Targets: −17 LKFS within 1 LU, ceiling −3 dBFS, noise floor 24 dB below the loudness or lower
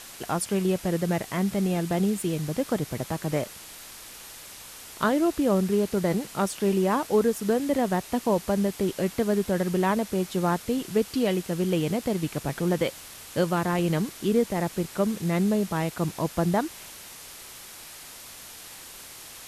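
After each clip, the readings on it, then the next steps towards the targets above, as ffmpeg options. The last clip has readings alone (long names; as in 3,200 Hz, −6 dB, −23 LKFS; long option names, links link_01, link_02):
background noise floor −44 dBFS; target noise floor −51 dBFS; integrated loudness −26.5 LKFS; sample peak −11.5 dBFS; target loudness −17.0 LKFS
→ -af "afftdn=noise_reduction=7:noise_floor=-44"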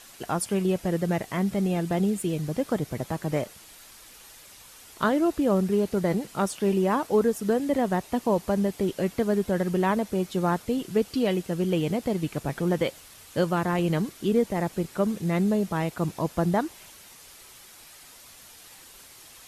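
background noise floor −50 dBFS; target noise floor −51 dBFS
→ -af "afftdn=noise_reduction=6:noise_floor=-50"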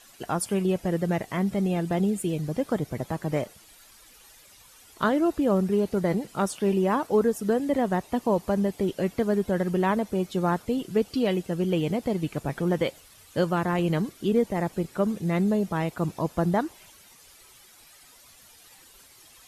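background noise floor −54 dBFS; integrated loudness −26.5 LKFS; sample peak −11.5 dBFS; target loudness −17.0 LKFS
→ -af "volume=9.5dB,alimiter=limit=-3dB:level=0:latency=1"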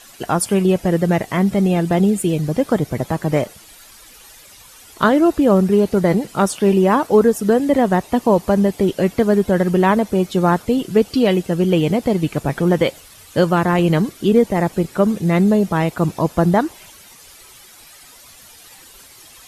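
integrated loudness −17.0 LKFS; sample peak −3.0 dBFS; background noise floor −44 dBFS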